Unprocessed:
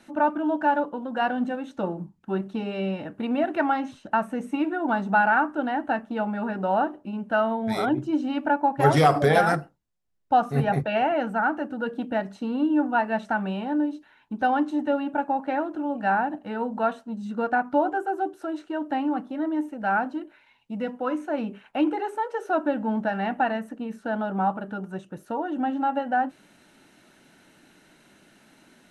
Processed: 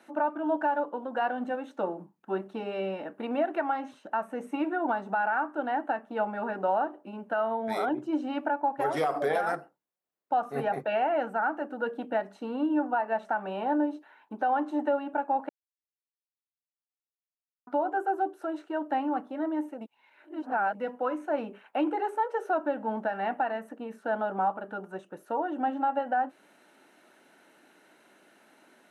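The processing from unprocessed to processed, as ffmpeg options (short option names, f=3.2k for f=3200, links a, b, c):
-filter_complex "[0:a]asettb=1/sr,asplit=3[a][b][c];[a]atrim=end=12.914[d];[b]atrim=start=12.91:end=14.99,asetpts=PTS-STARTPTS,afade=t=in:d=0.004:c=qsin,afade=t=out:st=2.076:d=0.004:c=qsin,equalizer=f=770:t=o:w=2.2:g=4.5[e];[c]atrim=start=14.986[f];[d][e]acrossfade=d=0.004:c1=hsin:c2=qsin[g];[g][f]acrossfade=d=0.004:c1=qsin:c2=hsin,asplit=5[h][i][j][k][l];[h]atrim=end=15.49,asetpts=PTS-STARTPTS,afade=t=out:st=15.486:d=0.004:c=hsin[m];[i]atrim=start=15.49:end=17.67,asetpts=PTS-STARTPTS,volume=0[n];[j]atrim=start=17.67:end=19.812,asetpts=PTS-STARTPTS,afade=t=in:d=0.004:c=hsin[o];[k]atrim=start=19.808:end=20.752,asetpts=PTS-STARTPTS,areverse[p];[l]atrim=start=20.748[q];[m][n][o]concat=n=3:v=0:a=1[r];[r][p]acrossfade=d=0.004:c1=hsin:c2=hsin[s];[s][q]acrossfade=d=0.004:c1=hsin:c2=hsin,highpass=400,alimiter=limit=-18.5dB:level=0:latency=1:release=265,equalizer=f=5.4k:w=0.41:g=-9,volume=1.5dB"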